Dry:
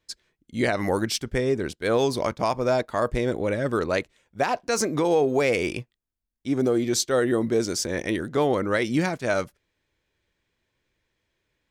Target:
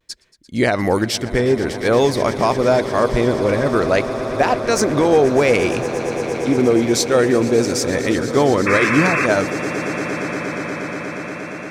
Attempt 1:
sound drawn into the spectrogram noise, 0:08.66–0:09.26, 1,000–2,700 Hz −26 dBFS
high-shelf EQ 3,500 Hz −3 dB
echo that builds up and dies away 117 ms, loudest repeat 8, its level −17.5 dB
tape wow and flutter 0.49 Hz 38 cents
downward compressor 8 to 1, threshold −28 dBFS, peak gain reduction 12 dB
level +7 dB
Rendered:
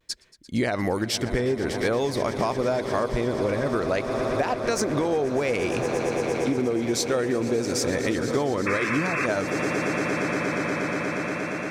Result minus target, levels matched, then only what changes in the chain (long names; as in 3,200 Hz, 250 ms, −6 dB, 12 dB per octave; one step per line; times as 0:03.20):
downward compressor: peak gain reduction +12 dB
remove: downward compressor 8 to 1, threshold −28 dBFS, peak gain reduction 12 dB